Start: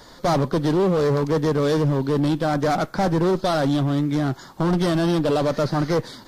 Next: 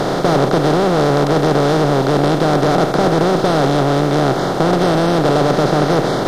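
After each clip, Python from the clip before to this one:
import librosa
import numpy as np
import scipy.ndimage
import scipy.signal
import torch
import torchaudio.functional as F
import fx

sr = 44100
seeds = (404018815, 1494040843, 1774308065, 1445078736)

y = fx.bin_compress(x, sr, power=0.2)
y = F.gain(torch.from_numpy(y), -1.0).numpy()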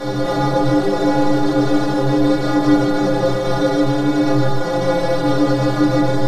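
y = fx.stiff_resonator(x, sr, f0_hz=61.0, decay_s=0.67, stiffness=0.03)
y = y + 10.0 ** (-3.5 / 20.0) * np.pad(y, (int(152 * sr / 1000.0), 0))[:len(y)]
y = fx.room_shoebox(y, sr, seeds[0], volume_m3=150.0, walls='furnished', distance_m=2.3)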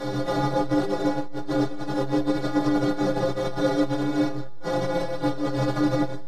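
y = fx.transformer_sat(x, sr, knee_hz=92.0)
y = F.gain(torch.from_numpy(y), -5.5).numpy()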